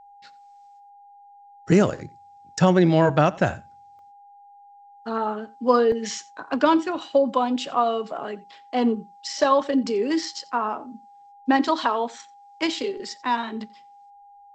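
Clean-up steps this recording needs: notch 810 Hz, Q 30; interpolate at 3.99/5.92, 1.1 ms; inverse comb 88 ms -22 dB

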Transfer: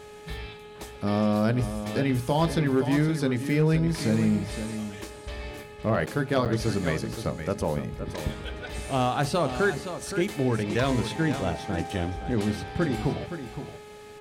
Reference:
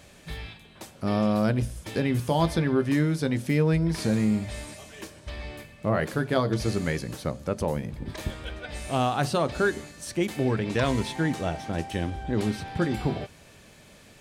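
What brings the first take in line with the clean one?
clip repair -15 dBFS; de-hum 420.2 Hz, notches 10; interpolate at 6.06/6.45, 8 ms; inverse comb 0.518 s -10 dB

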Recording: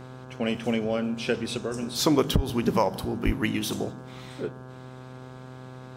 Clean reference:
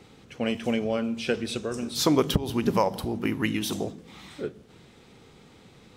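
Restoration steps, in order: de-hum 128.4 Hz, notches 13; de-plosive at 2.35/3.25

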